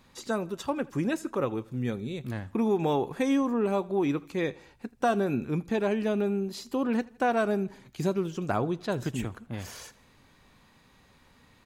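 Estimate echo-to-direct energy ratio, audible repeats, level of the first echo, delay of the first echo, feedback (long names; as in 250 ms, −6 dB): −22.0 dB, 3, −23.0 dB, 81 ms, 51%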